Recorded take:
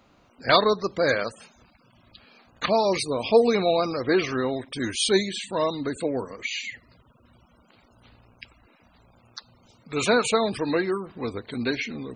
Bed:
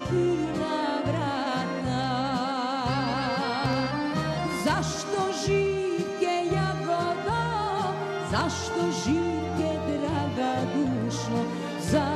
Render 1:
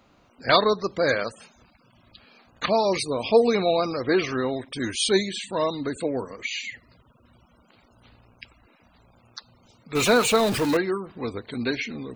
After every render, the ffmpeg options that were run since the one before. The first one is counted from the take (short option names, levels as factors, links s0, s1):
-filter_complex "[0:a]asettb=1/sr,asplit=3[s0][s1][s2];[s0]atrim=end=9.954[s3];[s1]atrim=start=9.95:end=10.77,asetpts=PTS-STARTPTS,afade=t=in:d=0.004:c=qsin,afade=t=out:st=0.816:d=0.004:c=qsin,aeval=exprs='val(0)+0.5*0.0596*sgn(val(0))':c=same[s4];[s2]atrim=start=10.766[s5];[s3][s4]acrossfade=d=0.004:c1=hsin:c2=qsin[s6];[s6][s5]acrossfade=d=0.004:c1=qsin:c2=hsin"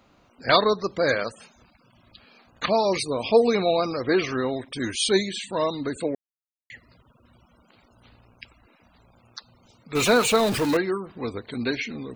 -filter_complex "[0:a]asplit=3[s0][s1][s2];[s0]atrim=end=6.15,asetpts=PTS-STARTPTS,afade=t=out:st=6.146:d=0.004:c=hsin[s3];[s1]atrim=start=6.15:end=6.7,asetpts=PTS-STARTPTS,volume=0[s4];[s2]atrim=start=6.7,asetpts=PTS-STARTPTS,afade=t=in:d=0.004:c=hsin[s5];[s3][s4][s5]concat=n=3:v=0:a=1"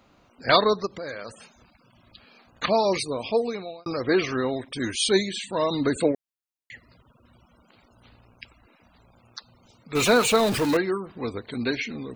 -filter_complex "[0:a]asplit=3[s0][s1][s2];[s0]afade=t=out:st=0.85:d=0.02[s3];[s1]acompressor=threshold=0.0178:ratio=3:attack=3.2:release=140:knee=1:detection=peak,afade=t=in:st=0.85:d=0.02,afade=t=out:st=1.28:d=0.02[s4];[s2]afade=t=in:st=1.28:d=0.02[s5];[s3][s4][s5]amix=inputs=3:normalize=0,asplit=3[s6][s7][s8];[s6]afade=t=out:st=5.7:d=0.02[s9];[s7]acontrast=38,afade=t=in:st=5.7:d=0.02,afade=t=out:st=6.11:d=0.02[s10];[s8]afade=t=in:st=6.11:d=0.02[s11];[s9][s10][s11]amix=inputs=3:normalize=0,asplit=2[s12][s13];[s12]atrim=end=3.86,asetpts=PTS-STARTPTS,afade=t=out:st=2.9:d=0.96[s14];[s13]atrim=start=3.86,asetpts=PTS-STARTPTS,afade=t=in:d=0.004:c=hsin[s15];[s14][s15]concat=n=2:v=0:a=1"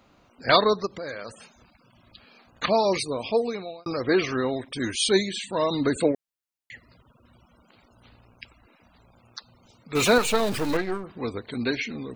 -filter_complex "[0:a]asettb=1/sr,asplit=3[s0][s1][s2];[s0]atrim=end=10.184[s3];[s1]atrim=start=10.18:end=11.04,asetpts=PTS-STARTPTS,afade=t=in:d=0.004:c=qsin,afade=t=out:st=0.856:d=0.004:c=qsin,aeval=exprs='if(lt(val(0),0),0.251*val(0),val(0))':c=same[s4];[s2]atrim=start=11.036[s5];[s3][s4]acrossfade=d=0.004:c1=hsin:c2=qsin[s6];[s6][s5]acrossfade=d=0.004:c1=qsin:c2=hsin"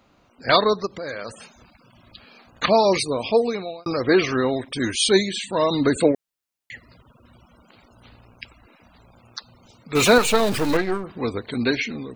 -af "dynaudnorm=f=170:g=5:m=1.78"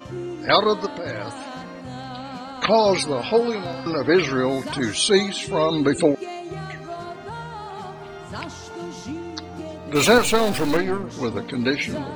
-filter_complex "[1:a]volume=0.447[s0];[0:a][s0]amix=inputs=2:normalize=0"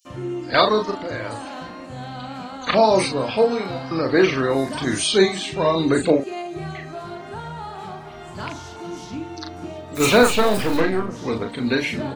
-filter_complex "[0:a]asplit=2[s0][s1];[s1]adelay=37,volume=0.562[s2];[s0][s2]amix=inputs=2:normalize=0,acrossover=split=5500[s3][s4];[s3]adelay=50[s5];[s5][s4]amix=inputs=2:normalize=0"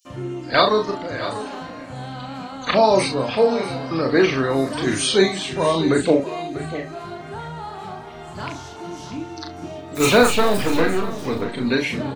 -filter_complex "[0:a]asplit=2[s0][s1];[s1]adelay=30,volume=0.282[s2];[s0][s2]amix=inputs=2:normalize=0,aecho=1:1:643:0.2"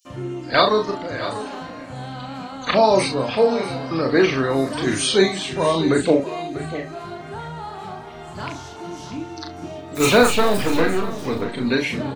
-af anull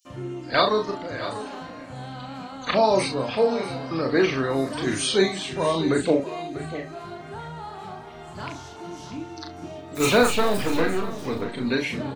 -af "volume=0.631"